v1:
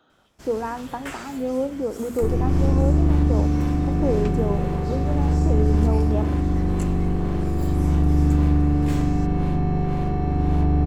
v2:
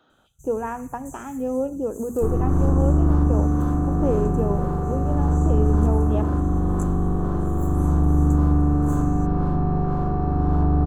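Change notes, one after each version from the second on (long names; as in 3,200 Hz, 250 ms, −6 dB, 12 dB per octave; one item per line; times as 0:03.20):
first sound: add linear-phase brick-wall band-stop 170–5,900 Hz
second sound: add high shelf with overshoot 1,700 Hz −8.5 dB, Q 3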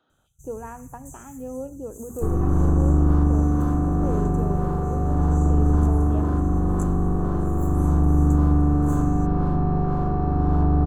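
speech −8.5 dB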